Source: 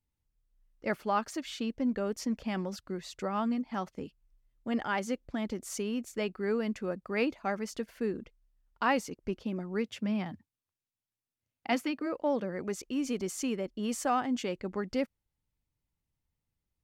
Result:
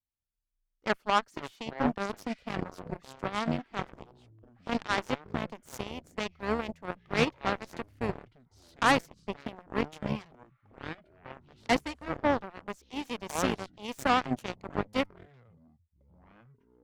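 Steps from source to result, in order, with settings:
delay with pitch and tempo change per echo 82 ms, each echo −7 semitones, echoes 3, each echo −6 dB
harmonic generator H 3 −37 dB, 5 −45 dB, 7 −16 dB, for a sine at −14.5 dBFS
level +4.5 dB

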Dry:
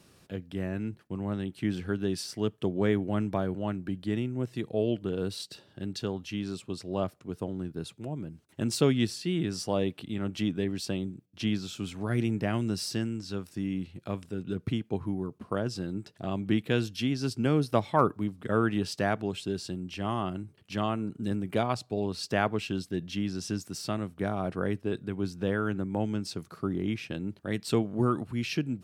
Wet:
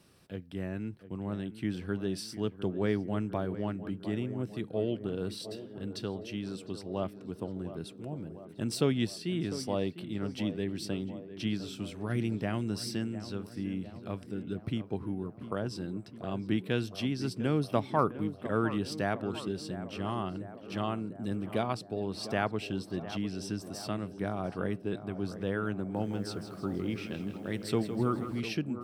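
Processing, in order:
notch filter 6,800 Hz, Q 6.8
tape delay 703 ms, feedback 76%, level −11 dB, low-pass 1,400 Hz
0:25.80–0:28.40: feedback echo at a low word length 161 ms, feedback 55%, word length 9 bits, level −10 dB
level −3.5 dB

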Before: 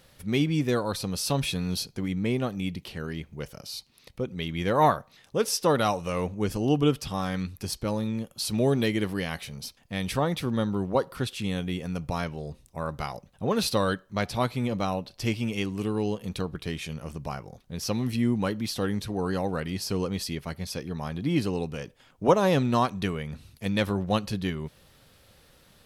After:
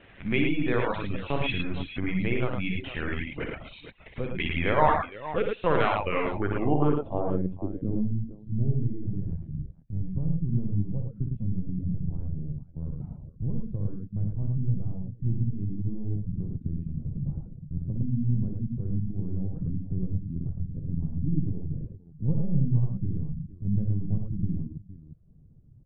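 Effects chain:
in parallel at +2.5 dB: downward compressor, threshold −34 dBFS, peak gain reduction 18.5 dB
on the sum: linear-prediction vocoder at 8 kHz pitch kept
low-pass filter sweep 2,300 Hz → 150 Hz, 0:06.17–0:08.25
multi-tap delay 60/108/192/461 ms −4/−3/−19/−12.5 dB
reverb reduction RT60 0.53 s
level −4.5 dB

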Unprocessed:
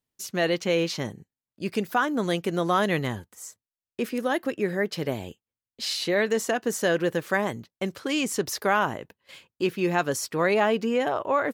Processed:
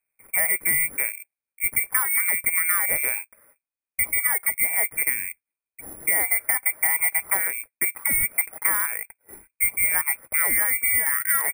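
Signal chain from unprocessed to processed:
voice inversion scrambler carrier 2,500 Hz
downward compressor, threshold −25 dBFS, peak gain reduction 8 dB
bad sample-rate conversion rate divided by 4×, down filtered, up zero stuff
level +1 dB

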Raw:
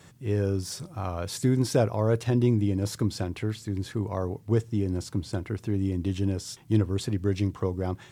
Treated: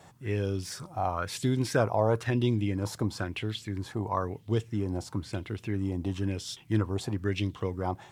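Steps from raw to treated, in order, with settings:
auto-filter bell 1 Hz 730–3,500 Hz +14 dB
level −4 dB

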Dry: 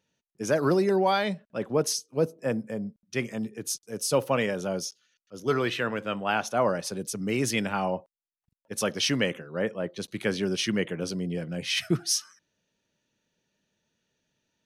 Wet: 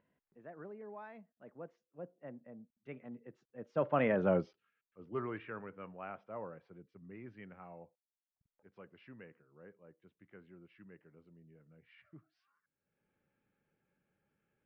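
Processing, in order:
source passing by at 0:04.26, 30 m/s, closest 5.3 metres
low-pass filter 2,100 Hz 24 dB per octave
upward compression, threshold −59 dBFS
level +1 dB

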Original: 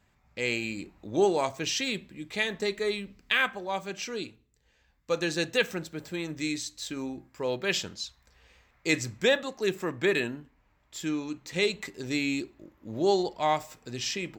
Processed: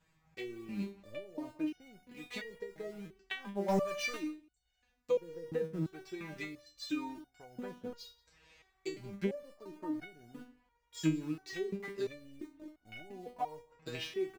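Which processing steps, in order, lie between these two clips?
loose part that buzzes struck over −33 dBFS, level −24 dBFS
treble cut that deepens with the level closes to 340 Hz, closed at −25 dBFS
in parallel at −3.5 dB: centre clipping without the shift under −42.5 dBFS
on the sum: downward compressor, threshold −28 dBFS, peak gain reduction 9.5 dB
0:03.68–0:04.17: leveller curve on the samples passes 3
on a send: single-tap delay 178 ms −24 dB
on the sum: step-sequenced resonator 2.9 Hz 160–730 Hz
level +9 dB

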